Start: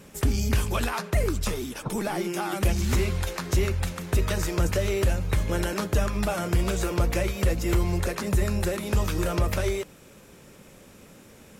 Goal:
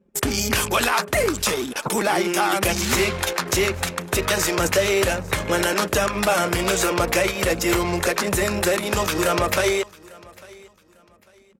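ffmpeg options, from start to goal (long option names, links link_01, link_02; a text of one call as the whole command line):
ffmpeg -i in.wav -filter_complex "[0:a]anlmdn=2.51,highpass=frequency=620:poles=1,asplit=2[link_01][link_02];[link_02]alimiter=limit=-23dB:level=0:latency=1:release=25,volume=2.5dB[link_03];[link_01][link_03]amix=inputs=2:normalize=0,aecho=1:1:849|1698:0.0668|0.0194,volume=5.5dB" out.wav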